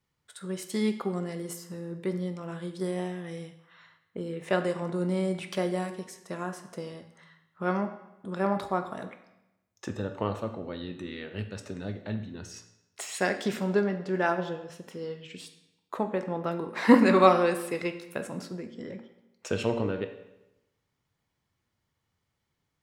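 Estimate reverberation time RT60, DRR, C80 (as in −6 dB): 0.95 s, 7.5 dB, 12.5 dB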